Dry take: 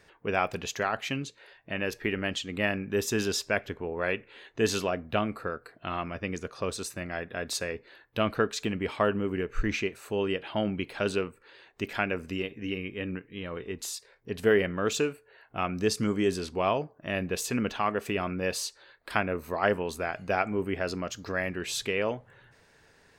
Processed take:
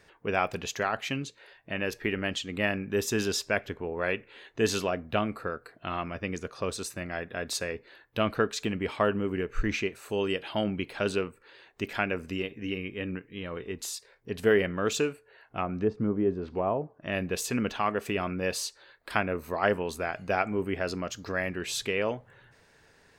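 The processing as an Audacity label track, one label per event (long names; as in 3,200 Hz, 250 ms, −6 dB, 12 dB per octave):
10.090000	10.640000	bass and treble bass −1 dB, treble +9 dB
15.110000	17.120000	treble cut that deepens with the level closes to 880 Hz, closed at −25 dBFS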